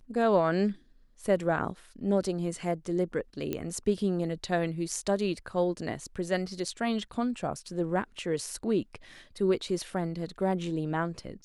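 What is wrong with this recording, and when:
0:03.53: click −18 dBFS

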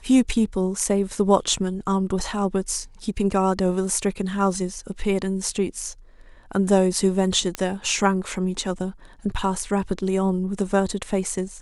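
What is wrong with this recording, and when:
0:07.55: click −11 dBFS

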